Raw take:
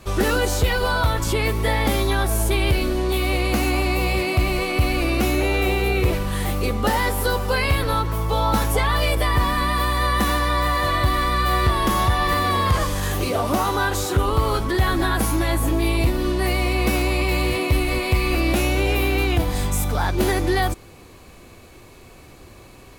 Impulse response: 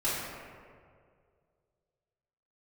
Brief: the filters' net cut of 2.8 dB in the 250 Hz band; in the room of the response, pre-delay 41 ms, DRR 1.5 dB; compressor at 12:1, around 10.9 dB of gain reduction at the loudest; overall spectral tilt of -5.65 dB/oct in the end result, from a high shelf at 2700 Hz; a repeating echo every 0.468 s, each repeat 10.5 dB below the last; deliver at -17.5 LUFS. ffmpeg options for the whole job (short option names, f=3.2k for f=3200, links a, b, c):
-filter_complex "[0:a]equalizer=f=250:t=o:g=-4,highshelf=f=2.7k:g=-5.5,acompressor=threshold=-25dB:ratio=12,aecho=1:1:468|936|1404:0.299|0.0896|0.0269,asplit=2[a][b];[1:a]atrim=start_sample=2205,adelay=41[c];[b][c]afir=irnorm=-1:irlink=0,volume=-11dB[d];[a][d]amix=inputs=2:normalize=0,volume=9.5dB"